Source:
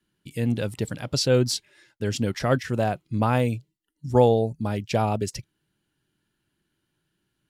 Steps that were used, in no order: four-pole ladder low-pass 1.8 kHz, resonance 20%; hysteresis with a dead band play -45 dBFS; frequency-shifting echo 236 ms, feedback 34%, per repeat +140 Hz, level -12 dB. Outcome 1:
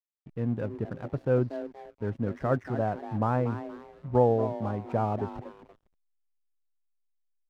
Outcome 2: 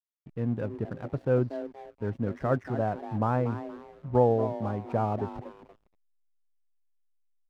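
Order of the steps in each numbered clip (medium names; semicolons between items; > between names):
four-pole ladder low-pass > frequency-shifting echo > hysteresis with a dead band; frequency-shifting echo > four-pole ladder low-pass > hysteresis with a dead band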